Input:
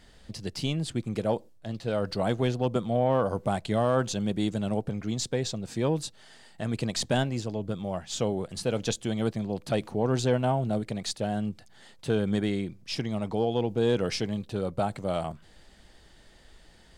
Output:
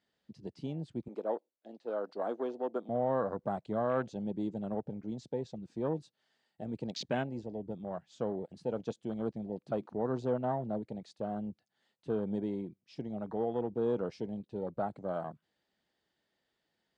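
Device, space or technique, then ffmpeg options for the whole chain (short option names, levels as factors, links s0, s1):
over-cleaned archive recording: -filter_complex "[0:a]highpass=170,lowpass=5800,afwtdn=0.02,asettb=1/sr,asplit=3[s0][s1][s2];[s0]atrim=end=1.084[s3];[s1]atrim=start=1.08:end=2.89,asetpts=PTS-STARTPTS,afade=t=in:d=0.004:c=qsin,afade=t=out:st=1.806:d=0.004:c=qsin,highpass=f=280:w=0.5412,highpass=f=280:w=1.3066[s4];[s2]atrim=start=2.886[s5];[s3][s4]acrossfade=d=0.004:c1=hsin:c2=qsin[s6];[s6][s5]acrossfade=d=0.004:c1=qsin:c2=hsin,volume=0.501"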